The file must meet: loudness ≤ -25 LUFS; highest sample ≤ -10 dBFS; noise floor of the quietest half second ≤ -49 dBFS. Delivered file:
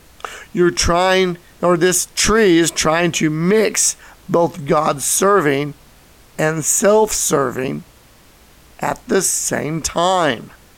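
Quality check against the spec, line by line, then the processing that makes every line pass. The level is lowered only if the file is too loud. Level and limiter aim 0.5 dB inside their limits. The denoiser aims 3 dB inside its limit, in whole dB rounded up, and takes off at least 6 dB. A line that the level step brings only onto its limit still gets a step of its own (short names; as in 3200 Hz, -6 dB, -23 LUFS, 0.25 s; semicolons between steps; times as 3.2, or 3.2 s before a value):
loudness -16.0 LUFS: fail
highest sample -4.5 dBFS: fail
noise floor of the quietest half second -47 dBFS: fail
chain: gain -9.5 dB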